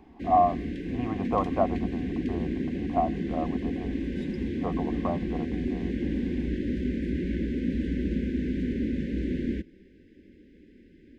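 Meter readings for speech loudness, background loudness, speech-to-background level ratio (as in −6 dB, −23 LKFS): −31.0 LKFS, −31.0 LKFS, 0.0 dB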